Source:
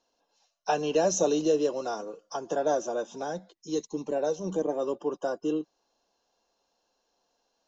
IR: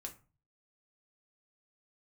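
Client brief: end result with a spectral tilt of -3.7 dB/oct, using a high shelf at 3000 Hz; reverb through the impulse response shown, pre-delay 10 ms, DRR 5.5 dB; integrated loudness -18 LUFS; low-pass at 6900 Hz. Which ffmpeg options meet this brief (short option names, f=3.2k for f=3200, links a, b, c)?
-filter_complex "[0:a]lowpass=6.9k,highshelf=f=3k:g=-7,asplit=2[a][b];[1:a]atrim=start_sample=2205,adelay=10[c];[b][c]afir=irnorm=-1:irlink=0,volume=-1.5dB[d];[a][d]amix=inputs=2:normalize=0,volume=10.5dB"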